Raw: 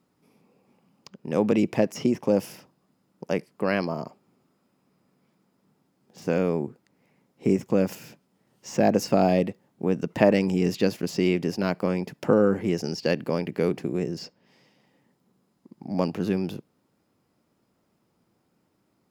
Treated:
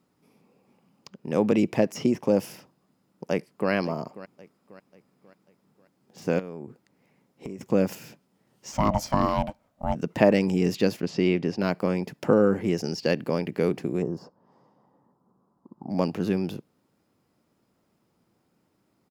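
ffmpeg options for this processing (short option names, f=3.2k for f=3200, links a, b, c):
-filter_complex "[0:a]asplit=2[a][b];[b]afade=t=in:st=3.3:d=0.01,afade=t=out:st=3.71:d=0.01,aecho=0:1:540|1080|1620|2160:0.149624|0.0673306|0.0302988|0.0136344[c];[a][c]amix=inputs=2:normalize=0,asettb=1/sr,asplit=3[d][e][f];[d]atrim=end=6.394[g];[e]atrim=start=6.39:end=7.61,asetpts=PTS-STARTPTS,afade=t=in:d=0.004:c=qsin,afade=t=out:st=1.216:d=0.004:c=qsin,acompressor=threshold=-32dB:ratio=12:attack=3.2:release=140:knee=1:detection=peak[h];[f]atrim=start=7.606[i];[g][h]acrossfade=d=0.004:c1=hsin:c2=qsin[j];[j][i]acrossfade=d=0.004:c1=qsin:c2=hsin,asplit=3[k][l][m];[k]afade=t=out:st=8.71:d=0.02[n];[l]aeval=exprs='val(0)*sin(2*PI*410*n/s)':c=same,afade=t=in:st=8.71:d=0.02,afade=t=out:st=9.94:d=0.02[o];[m]afade=t=in:st=9.94:d=0.02[p];[n][o][p]amix=inputs=3:normalize=0,asettb=1/sr,asplit=3[q][r][s];[q]atrim=end=11.004[t];[r]atrim=start=11:end=11.61,asetpts=PTS-STARTPTS,afade=t=in:d=0.004:c=qsin,afade=t=out:st=0.606:d=0.004:c=qsin,lowpass=4.6k[u];[s]atrim=start=11.606[v];[t][u]acrossfade=d=0.004:c1=hsin:c2=qsin[w];[w][v]acrossfade=d=0.004:c1=qsin:c2=hsin,asplit=3[x][y][z];[x]afade=t=out:st=14.01:d=0.02[aa];[y]highshelf=f=1.6k:t=q:w=3:g=-14,afade=t=in:st=14.01:d=0.02,afade=t=out:st=15.89:d=0.02[ab];[z]afade=t=in:st=15.89:d=0.02[ac];[aa][ab][ac]amix=inputs=3:normalize=0"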